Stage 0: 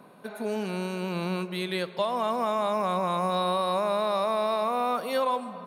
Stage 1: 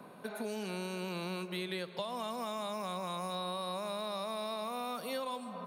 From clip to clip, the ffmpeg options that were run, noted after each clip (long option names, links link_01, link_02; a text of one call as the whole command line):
ffmpeg -i in.wav -filter_complex "[0:a]acrossover=split=200|3000[link_01][link_02][link_03];[link_01]acompressor=threshold=-50dB:ratio=4[link_04];[link_02]acompressor=threshold=-39dB:ratio=4[link_05];[link_03]acompressor=threshold=-45dB:ratio=4[link_06];[link_04][link_05][link_06]amix=inputs=3:normalize=0" out.wav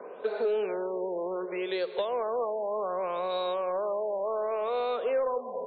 ffmpeg -i in.wav -af "highpass=frequency=450:width_type=q:width=4.9,asoftclip=type=tanh:threshold=-24dB,afftfilt=real='re*lt(b*sr/1024,1000*pow(4600/1000,0.5+0.5*sin(2*PI*0.67*pts/sr)))':imag='im*lt(b*sr/1024,1000*pow(4600/1000,0.5+0.5*sin(2*PI*0.67*pts/sr)))':win_size=1024:overlap=0.75,volume=4dB" out.wav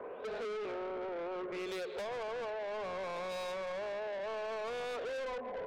ffmpeg -i in.wav -af "asoftclip=type=tanh:threshold=-37.5dB" out.wav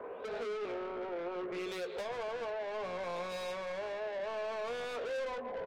ffmpeg -i in.wav -filter_complex "[0:a]asplit=2[link_01][link_02];[link_02]adelay=17,volume=-8.5dB[link_03];[link_01][link_03]amix=inputs=2:normalize=0" out.wav